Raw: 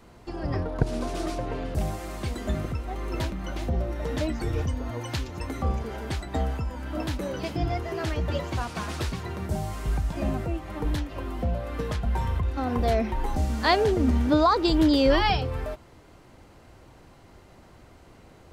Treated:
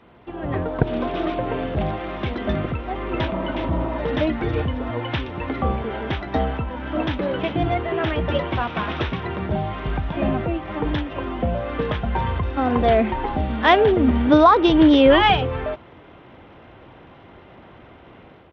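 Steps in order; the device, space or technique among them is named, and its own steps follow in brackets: spectral repair 3.3–3.96, 220–1400 Hz before; Bluetooth headset (HPF 140 Hz 6 dB/oct; AGC gain up to 6 dB; downsampling 8000 Hz; gain +2.5 dB; SBC 64 kbps 32000 Hz)

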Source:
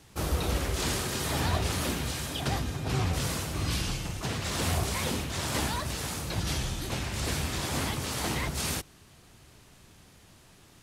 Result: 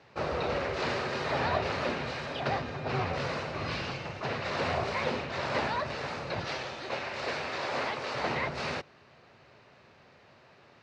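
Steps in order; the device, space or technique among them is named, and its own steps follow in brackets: 6.44–8.15 tone controls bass -10 dB, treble +2 dB; kitchen radio (speaker cabinet 180–3900 Hz, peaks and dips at 190 Hz -8 dB, 300 Hz -9 dB, 570 Hz +5 dB, 3300 Hz -10 dB); gain +3 dB

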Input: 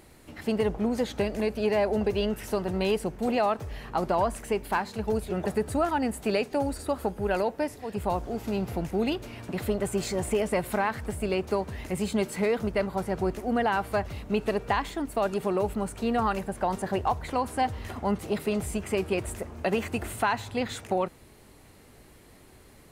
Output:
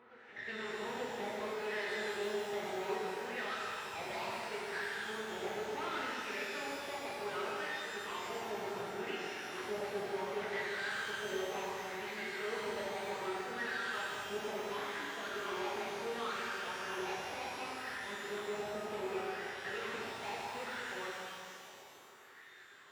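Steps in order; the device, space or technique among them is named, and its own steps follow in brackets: wah-wah guitar rig (wah 0.68 Hz 760–1800 Hz, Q 6.4; tube stage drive 48 dB, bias 0.35; speaker cabinet 98–4000 Hz, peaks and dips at 110 Hz +5 dB, 400 Hz +6 dB, 750 Hz -9 dB, 1100 Hz -4 dB); reverse echo 0.884 s -19 dB; shimmer reverb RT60 2.5 s, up +12 st, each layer -8 dB, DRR -6 dB; gain +7 dB

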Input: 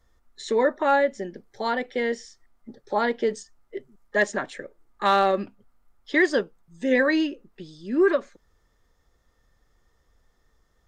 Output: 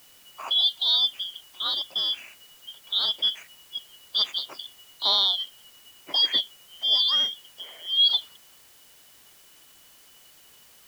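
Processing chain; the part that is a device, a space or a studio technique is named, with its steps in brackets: 5.32–6.34 band shelf 680 Hz -8.5 dB 1.2 oct; split-band scrambled radio (four-band scrambler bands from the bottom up 3412; BPF 300–2900 Hz; white noise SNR 26 dB); gain +3.5 dB

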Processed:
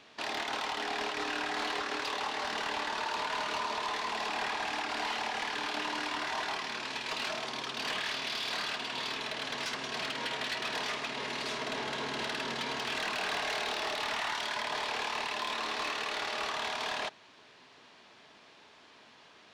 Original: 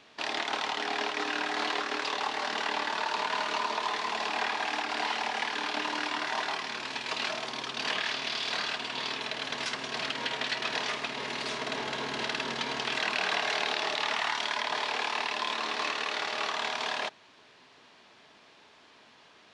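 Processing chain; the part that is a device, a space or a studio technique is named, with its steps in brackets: saturation between pre-emphasis and de-emphasis (high shelf 7700 Hz +7 dB; soft clip -28 dBFS, distortion -12 dB; high shelf 7700 Hz -7 dB)

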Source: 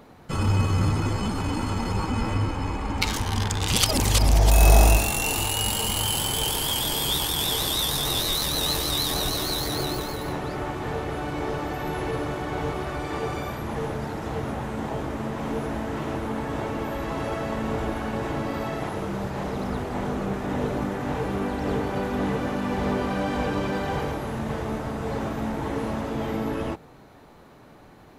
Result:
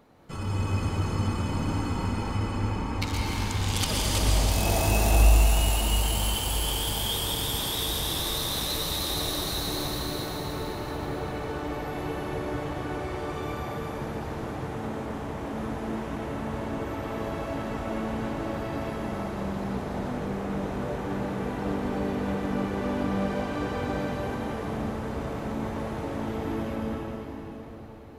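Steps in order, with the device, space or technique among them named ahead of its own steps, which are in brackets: cathedral (reverb RT60 4.7 s, pre-delay 0.11 s, DRR -4 dB); gain -9 dB

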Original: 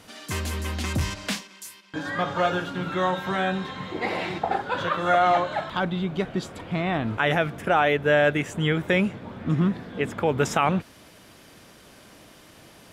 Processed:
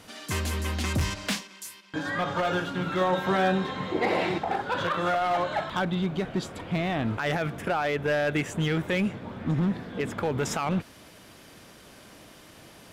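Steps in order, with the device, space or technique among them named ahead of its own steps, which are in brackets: limiter into clipper (limiter -16.5 dBFS, peak gain reduction 7.5 dB; hard clip -20.5 dBFS, distortion -18 dB); 3.01–4.38 bell 440 Hz +5 dB 2.1 oct

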